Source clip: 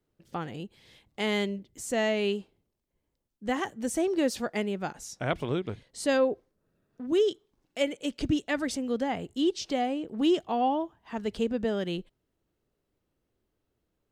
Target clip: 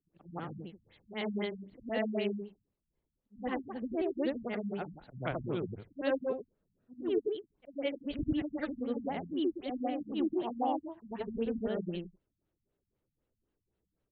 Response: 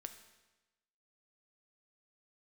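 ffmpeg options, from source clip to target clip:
-af "afftfilt=real='re':imag='-im':win_size=8192:overlap=0.75,afftfilt=real='re*lt(b*sr/1024,220*pow(4700/220,0.5+0.5*sin(2*PI*3.9*pts/sr)))':imag='im*lt(b*sr/1024,220*pow(4700/220,0.5+0.5*sin(2*PI*3.9*pts/sr)))':win_size=1024:overlap=0.75"

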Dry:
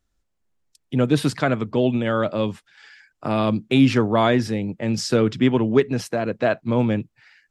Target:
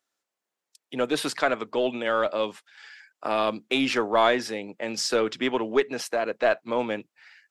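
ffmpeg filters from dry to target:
-filter_complex "[0:a]highpass=490,asplit=2[a][b];[b]aeval=exprs='clip(val(0),-1,0.0531)':c=same,volume=-11.5dB[c];[a][c]amix=inputs=2:normalize=0,volume=-1.5dB"

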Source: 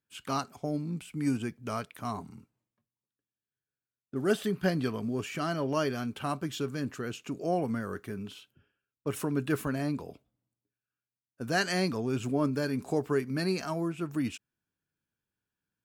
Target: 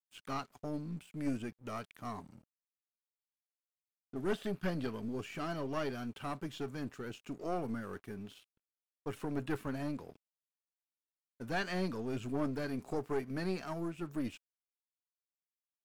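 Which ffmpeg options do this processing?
-filter_complex "[0:a]aeval=exprs='(tanh(15.8*val(0)+0.6)-tanh(0.6))/15.8':c=same,acrossover=split=4300[a][b];[b]acompressor=threshold=-53dB:ratio=4:attack=1:release=60[c];[a][c]amix=inputs=2:normalize=0,aeval=exprs='sgn(val(0))*max(abs(val(0))-0.00119,0)':c=same,volume=-2.5dB"

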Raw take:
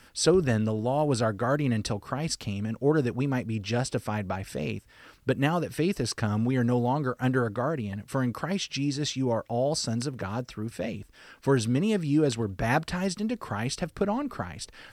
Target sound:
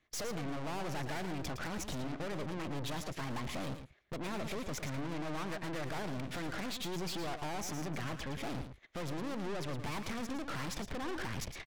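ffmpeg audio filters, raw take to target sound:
-af "lowpass=8.2k,agate=range=-30dB:threshold=-45dB:ratio=16:detection=peak,bass=f=250:g=-1,treble=f=4k:g=-15,acompressor=threshold=-36dB:ratio=6,aeval=exprs='(tanh(447*val(0)+0.75)-tanh(0.75))/447':c=same,asetrate=56448,aresample=44100,aecho=1:1:112:0.355,volume=14.5dB"

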